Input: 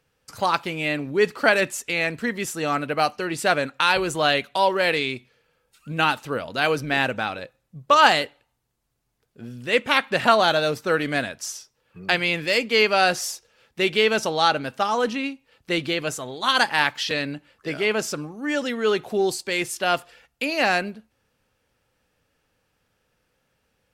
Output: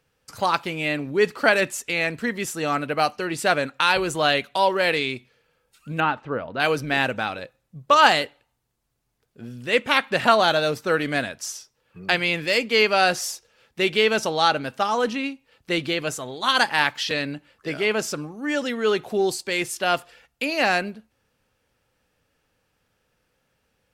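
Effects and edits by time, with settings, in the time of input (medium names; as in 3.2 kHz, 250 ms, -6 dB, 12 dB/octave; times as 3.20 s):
6.00–6.60 s: low-pass 1.8 kHz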